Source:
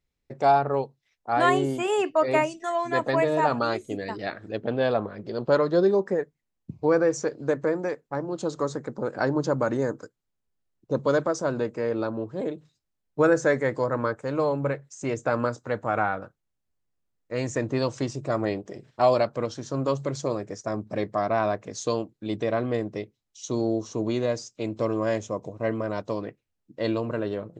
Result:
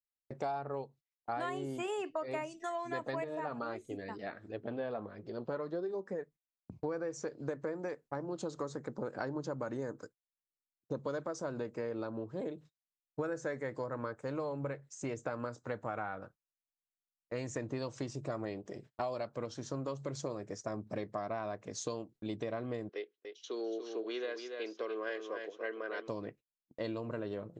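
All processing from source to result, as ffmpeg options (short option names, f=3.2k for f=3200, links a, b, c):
-filter_complex "[0:a]asettb=1/sr,asplit=3[a][b][c];[a]atrim=end=3.244[d];[b]atrim=start=3.24:end=6.72,asetpts=PTS-STARTPTS,afade=t=in:d=0.004:c=qsin,afade=t=out:st=3.476:d=0.004:c=qsin,acrossover=split=2700[e][f];[f]acompressor=threshold=-50dB:ratio=4:attack=1:release=60[g];[e][g]amix=inputs=2:normalize=0,flanger=delay=2.3:depth=2.5:regen=-63:speed=1.5:shape=triangular[h];[c]atrim=start=6.716[i];[d][h]acrossfade=d=0.004:c1=hsin:c2=qsin[j];[j][i]acrossfade=d=0.004:c1=qsin:c2=hsin,asettb=1/sr,asplit=3[k][l][m];[k]atrim=end=22.894[n];[l]atrim=start=22.89:end=26.08,asetpts=PTS-STARTPTS,afade=t=in:d=0.004:c=qsin,afade=t=out:st=3.186:d=0.004:c=qsin,highpass=f=400:w=0.5412,highpass=f=400:w=1.3066,equalizer=f=420:t=q:w=4:g=5,equalizer=f=610:t=q:w=4:g=-9,equalizer=f=920:t=q:w=4:g=-8,equalizer=f=1.6k:t=q:w=4:g=8,equalizer=f=3.1k:t=q:w=4:g=6,lowpass=f=4.6k:w=0.5412,lowpass=f=4.6k:w=1.3066,aecho=1:1:287:0.376,atrim=end_sample=140679[o];[m]atrim=start=26.076[p];[n][o]acrossfade=d=0.004:c1=hsin:c2=qsin[q];[q][p]acrossfade=d=0.004:c1=qsin:c2=hsin,agate=range=-26dB:threshold=-47dB:ratio=16:detection=peak,acompressor=threshold=-29dB:ratio=6,volume=-5.5dB"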